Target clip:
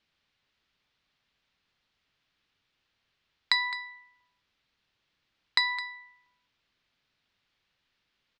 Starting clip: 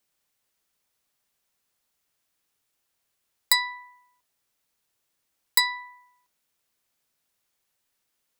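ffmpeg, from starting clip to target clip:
ffmpeg -i in.wav -af "lowpass=frequency=4100:width=0.5412,lowpass=frequency=4100:width=1.3066,equalizer=frequency=610:width_type=o:width=2.4:gain=-7.5,acompressor=threshold=-30dB:ratio=6,aecho=1:1:212:0.188,volume=8dB" out.wav

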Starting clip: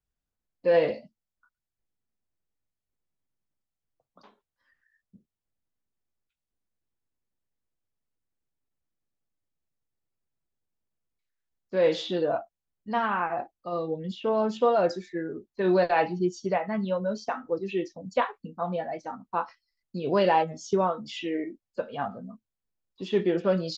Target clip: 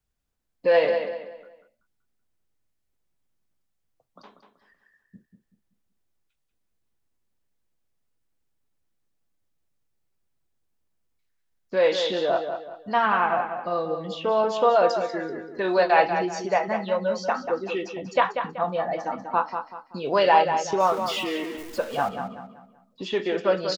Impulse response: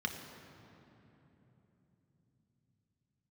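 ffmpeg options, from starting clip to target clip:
-filter_complex "[0:a]asettb=1/sr,asplit=3[link_01][link_02][link_03];[link_01]atrim=end=20.804[link_04];[link_02]atrim=start=20.8:end=22.09,asetpts=PTS-STARTPTS,afade=type=in:duration=0.004:curve=qsin,afade=type=out:start_time=1.286:duration=0.004:curve=qsin,aeval=exprs='val(0)+0.5*0.00891*sgn(val(0))':channel_layout=same[link_05];[link_03]atrim=start=22.086[link_06];[link_04][link_05]acrossfade=duration=0.004:curve1=hsin:curve2=qsin[link_07];[link_07][link_06]acrossfade=duration=0.004:curve1=qsin:curve2=hsin,acrossover=split=480|2500[link_08][link_09][link_10];[link_08]acompressor=threshold=-41dB:ratio=6[link_11];[link_11][link_09][link_10]amix=inputs=3:normalize=0,asplit=2[link_12][link_13];[link_13]adelay=190,lowpass=frequency=4700:poles=1,volume=-7.5dB,asplit=2[link_14][link_15];[link_15]adelay=190,lowpass=frequency=4700:poles=1,volume=0.35,asplit=2[link_16][link_17];[link_17]adelay=190,lowpass=frequency=4700:poles=1,volume=0.35,asplit=2[link_18][link_19];[link_19]adelay=190,lowpass=frequency=4700:poles=1,volume=0.35[link_20];[link_12][link_14][link_16][link_18][link_20]amix=inputs=5:normalize=0,volume=6dB"

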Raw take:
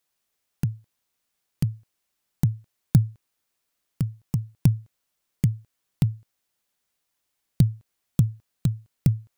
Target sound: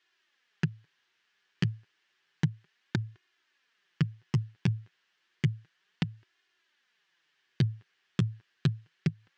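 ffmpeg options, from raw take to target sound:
ffmpeg -i in.wav -af "equalizer=frequency=2100:width_type=o:width=3:gain=11.5,flanger=delay=2.8:depth=7.4:regen=-5:speed=0.31:shape=sinusoidal,highpass=120,equalizer=frequency=160:width_type=q:width=4:gain=6,equalizer=frequency=260:width_type=q:width=4:gain=-3,equalizer=frequency=370:width_type=q:width=4:gain=9,equalizer=frequency=620:width_type=q:width=4:gain=-5,equalizer=frequency=1700:width_type=q:width=4:gain=9,equalizer=frequency=3000:width_type=q:width=4:gain=5,lowpass=frequency=6000:width=0.5412,lowpass=frequency=6000:width=1.3066,alimiter=limit=-16dB:level=0:latency=1:release=180" out.wav

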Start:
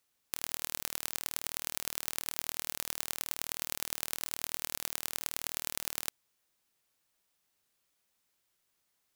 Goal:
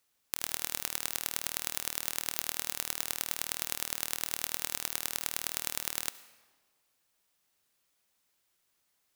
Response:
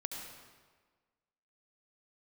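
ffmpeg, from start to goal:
-filter_complex "[0:a]asplit=2[link_01][link_02];[1:a]atrim=start_sample=2205,lowshelf=frequency=220:gain=-11.5[link_03];[link_02][link_03]afir=irnorm=-1:irlink=0,volume=-9dB[link_04];[link_01][link_04]amix=inputs=2:normalize=0"

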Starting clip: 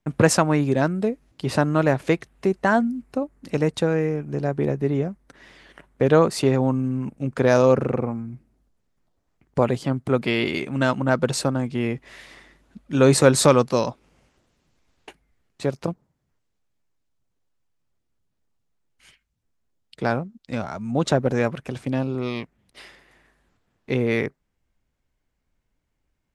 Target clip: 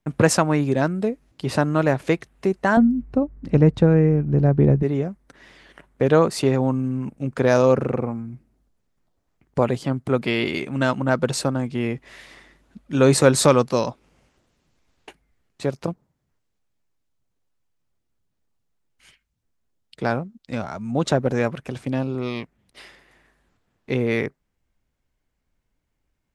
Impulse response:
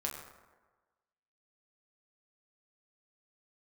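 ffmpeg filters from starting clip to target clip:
-filter_complex "[0:a]asettb=1/sr,asplit=3[link_01][link_02][link_03];[link_01]atrim=end=2.774[link_04];[link_02]atrim=start=2.77:end=4.83,asetpts=PTS-STARTPTS,afade=type=in:duration=0.004:curve=qsin,afade=type=out:start_time=2.056:duration=0.004:curve=qsin,aemphasis=mode=reproduction:type=riaa[link_05];[link_03]atrim=start=4.826[link_06];[link_04][link_05]acrossfade=duration=0.004:curve1=hsin:curve2=qsin[link_07];[link_07][link_06]acrossfade=duration=0.004:curve1=qsin:curve2=hsin"

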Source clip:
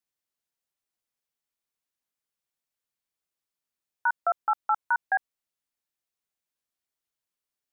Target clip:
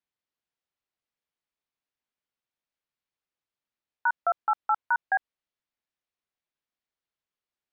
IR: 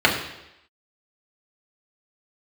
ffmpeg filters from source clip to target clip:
-af "lowpass=3900"

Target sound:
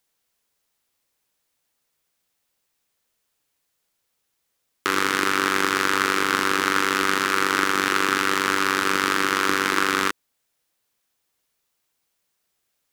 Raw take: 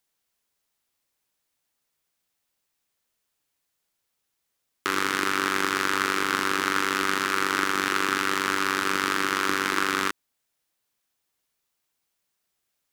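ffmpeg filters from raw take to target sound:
ffmpeg -i in.wav -af "equalizer=frequency=490:width=5.8:gain=3,volume=3.5dB" out.wav

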